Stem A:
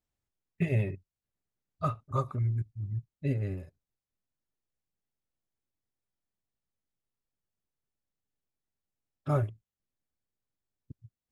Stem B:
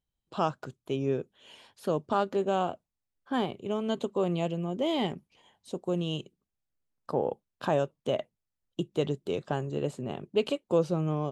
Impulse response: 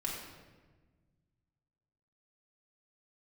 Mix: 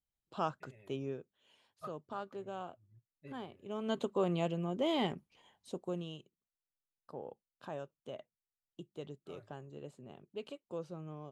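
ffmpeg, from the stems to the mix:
-filter_complex "[0:a]bass=f=250:g=-11,treble=f=4000:g=-1,volume=0.178[s0];[1:a]volume=1.5,afade=t=out:st=0.95:d=0.28:silence=0.398107,afade=t=in:st=3.61:d=0.35:silence=0.251189,afade=t=out:st=5.62:d=0.57:silence=0.237137,asplit=2[s1][s2];[s2]apad=whole_len=499012[s3];[s0][s3]sidechaincompress=threshold=0.00251:ratio=5:attack=16:release=477[s4];[s4][s1]amix=inputs=2:normalize=0,adynamicequalizer=threshold=0.00316:dfrequency=1400:dqfactor=1.1:tfrequency=1400:tqfactor=1.1:attack=5:release=100:ratio=0.375:range=2:mode=boostabove:tftype=bell"

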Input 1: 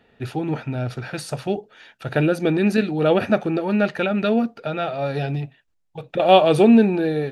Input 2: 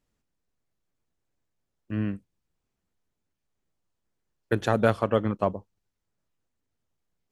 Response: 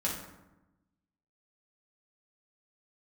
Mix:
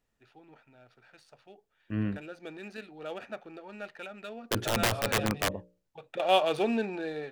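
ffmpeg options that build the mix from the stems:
-filter_complex "[0:a]highpass=f=840:p=1,adynamicsmooth=sensitivity=6:basefreq=3600,volume=0.473,afade=t=in:st=2.05:d=0.35:silence=0.473151,afade=t=in:st=4.43:d=0.22:silence=0.334965[s0];[1:a]bandreject=f=60:t=h:w=6,bandreject=f=120:t=h:w=6,bandreject=f=180:t=h:w=6,bandreject=f=240:t=h:w=6,bandreject=f=300:t=h:w=6,bandreject=f=360:t=h:w=6,bandreject=f=420:t=h:w=6,bandreject=f=480:t=h:w=6,bandreject=f=540:t=h:w=6,bandreject=f=600:t=h:w=6,deesser=0.85,aeval=exprs='(mod(7.08*val(0)+1,2)-1)/7.08':c=same,volume=0.794[s1];[s0][s1]amix=inputs=2:normalize=0"

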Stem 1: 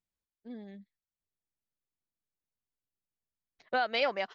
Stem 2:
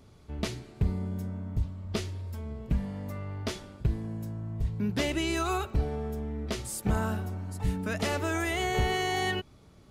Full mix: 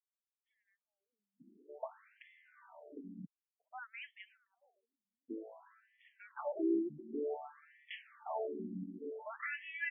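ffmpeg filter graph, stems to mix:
-filter_complex "[0:a]volume=0.2,asplit=2[s0][s1];[s1]volume=0.0708[s2];[1:a]lowpass=2600,lowshelf=f=180:g=8.5,adelay=1400,volume=0.891,asplit=3[s3][s4][s5];[s3]atrim=end=3.25,asetpts=PTS-STARTPTS,afade=t=out:st=3.246:d=0.004:c=hsin[s6];[s4]atrim=start=3.25:end=5.3,asetpts=PTS-STARTPTS,volume=0[s7];[s5]atrim=start=5.3,asetpts=PTS-STARTPTS,afade=t=in:d=0.004:c=hsin[s8];[s6][s7][s8]concat=n=3:v=0:a=1[s9];[s2]aecho=0:1:298|596|894|1192|1490|1788|2086|2384:1|0.52|0.27|0.141|0.0731|0.038|0.0198|0.0103[s10];[s0][s9][s10]amix=inputs=3:normalize=0,afftfilt=real='re*between(b*sr/1024,240*pow(2500/240,0.5+0.5*sin(2*PI*0.54*pts/sr))/1.41,240*pow(2500/240,0.5+0.5*sin(2*PI*0.54*pts/sr))*1.41)':imag='im*between(b*sr/1024,240*pow(2500/240,0.5+0.5*sin(2*PI*0.54*pts/sr))/1.41,240*pow(2500/240,0.5+0.5*sin(2*PI*0.54*pts/sr))*1.41)':win_size=1024:overlap=0.75"

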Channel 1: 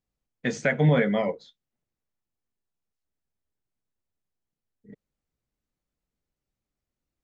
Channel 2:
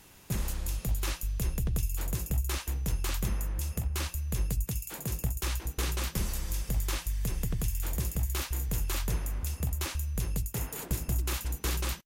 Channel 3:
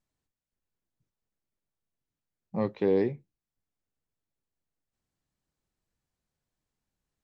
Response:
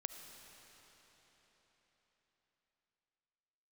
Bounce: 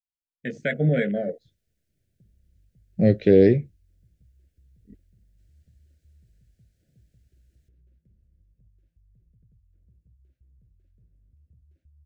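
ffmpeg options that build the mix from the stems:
-filter_complex "[0:a]afwtdn=0.02,volume=0.398,asplit=2[s0][s1];[1:a]alimiter=level_in=1.12:limit=0.0631:level=0:latency=1:release=231,volume=0.891,acompressor=threshold=0.00891:ratio=6,bandpass=f=100:t=q:w=1.2:csg=0,adelay=1900,volume=0.299[s2];[2:a]equalizer=f=71:t=o:w=1.6:g=13,adelay=450,volume=1.33[s3];[s1]apad=whole_len=615501[s4];[s2][s4]sidechaingate=range=0.398:threshold=0.00141:ratio=16:detection=peak[s5];[s0][s5][s3]amix=inputs=3:normalize=0,dynaudnorm=f=140:g=7:m=2.24,asuperstop=centerf=1000:order=8:qfactor=1.3"

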